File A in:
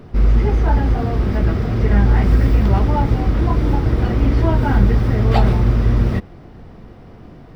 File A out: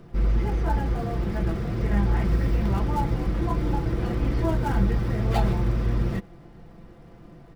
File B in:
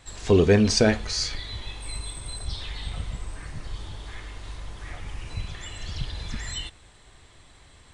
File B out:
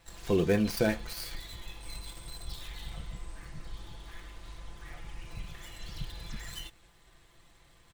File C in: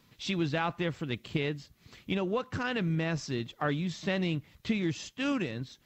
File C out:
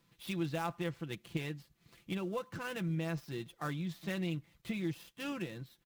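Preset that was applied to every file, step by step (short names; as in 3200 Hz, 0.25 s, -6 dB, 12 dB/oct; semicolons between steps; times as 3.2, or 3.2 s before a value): switching dead time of 0.071 ms; comb 5.9 ms, depth 52%; gain -8.5 dB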